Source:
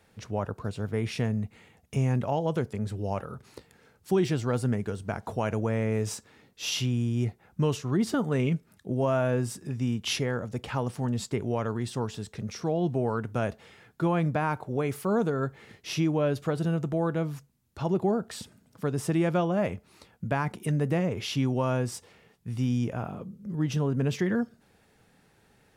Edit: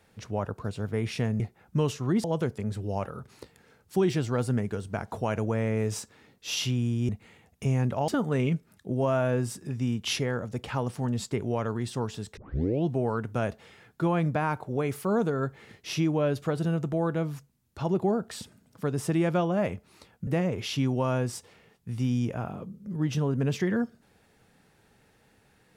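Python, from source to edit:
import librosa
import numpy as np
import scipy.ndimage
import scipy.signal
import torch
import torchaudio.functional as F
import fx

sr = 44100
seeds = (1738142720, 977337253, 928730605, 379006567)

y = fx.edit(x, sr, fx.swap(start_s=1.4, length_s=0.99, other_s=7.24, other_length_s=0.84),
    fx.tape_start(start_s=12.37, length_s=0.48),
    fx.cut(start_s=20.27, length_s=0.59), tone=tone)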